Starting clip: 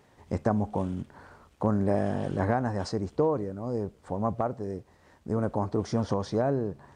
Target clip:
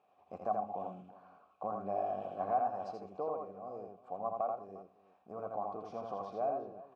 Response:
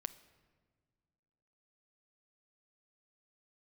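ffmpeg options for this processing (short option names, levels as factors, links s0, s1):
-filter_complex "[0:a]asplit=3[s0][s1][s2];[s0]bandpass=f=730:t=q:w=8,volume=1[s3];[s1]bandpass=f=1090:t=q:w=8,volume=0.501[s4];[s2]bandpass=f=2440:t=q:w=8,volume=0.355[s5];[s3][s4][s5]amix=inputs=3:normalize=0,equalizer=f=190:t=o:w=0.65:g=5,aecho=1:1:82|351:0.668|0.126[s6];[1:a]atrim=start_sample=2205,atrim=end_sample=3528,asetrate=27342,aresample=44100[s7];[s6][s7]afir=irnorm=-1:irlink=0"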